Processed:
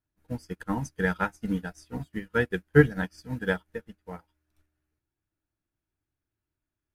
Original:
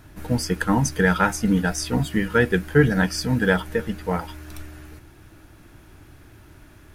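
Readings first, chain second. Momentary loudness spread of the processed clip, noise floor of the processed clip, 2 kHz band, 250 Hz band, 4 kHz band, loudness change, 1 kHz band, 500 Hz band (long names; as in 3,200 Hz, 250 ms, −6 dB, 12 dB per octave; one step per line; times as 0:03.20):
20 LU, below −85 dBFS, −7.0 dB, −8.0 dB, −14.5 dB, −6.5 dB, −9.5 dB, −5.5 dB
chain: expander for the loud parts 2.5 to 1, over −38 dBFS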